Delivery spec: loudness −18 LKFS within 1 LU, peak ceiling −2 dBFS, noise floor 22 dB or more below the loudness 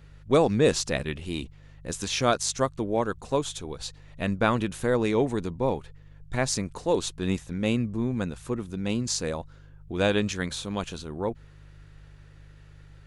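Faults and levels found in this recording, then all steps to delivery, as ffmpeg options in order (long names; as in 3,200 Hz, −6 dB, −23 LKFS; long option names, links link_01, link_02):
mains hum 50 Hz; hum harmonics up to 150 Hz; level of the hum −49 dBFS; integrated loudness −27.5 LKFS; sample peak −8.5 dBFS; target loudness −18.0 LKFS
→ -af "bandreject=frequency=50:width_type=h:width=4,bandreject=frequency=100:width_type=h:width=4,bandreject=frequency=150:width_type=h:width=4"
-af "volume=9.5dB,alimiter=limit=-2dB:level=0:latency=1"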